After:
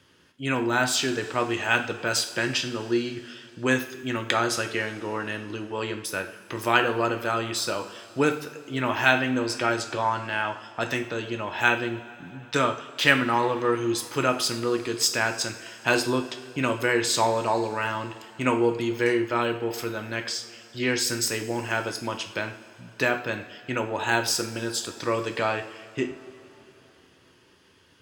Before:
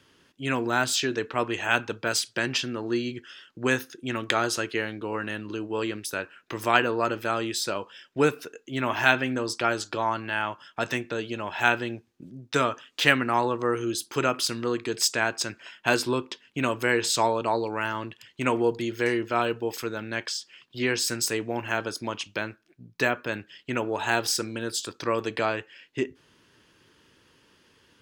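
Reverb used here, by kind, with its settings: two-slope reverb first 0.49 s, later 3.9 s, from -18 dB, DRR 5 dB

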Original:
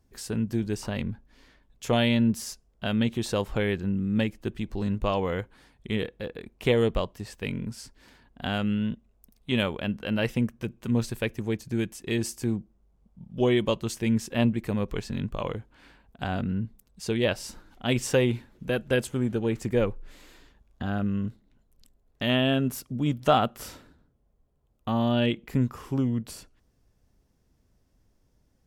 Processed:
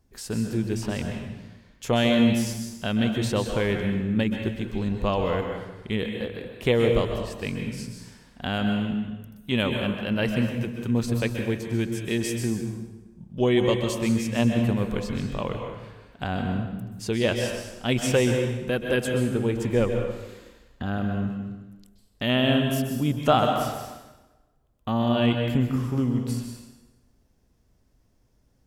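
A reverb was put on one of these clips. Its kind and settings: plate-style reverb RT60 1.1 s, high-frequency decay 0.85×, pre-delay 115 ms, DRR 3.5 dB; trim +1 dB

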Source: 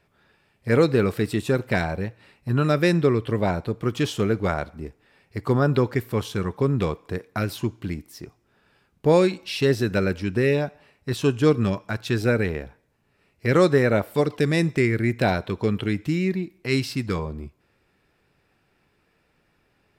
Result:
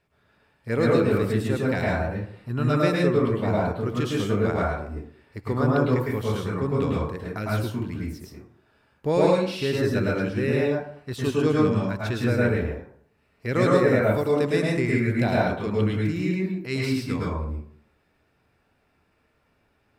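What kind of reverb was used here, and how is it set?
plate-style reverb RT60 0.58 s, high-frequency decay 0.45×, pre-delay 95 ms, DRR -4.5 dB; trim -6.5 dB

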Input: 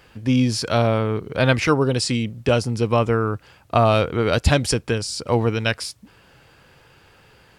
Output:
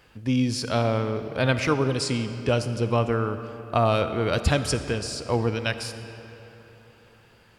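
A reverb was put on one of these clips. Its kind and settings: algorithmic reverb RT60 3.4 s, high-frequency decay 0.7×, pre-delay 15 ms, DRR 10 dB; trim -5 dB

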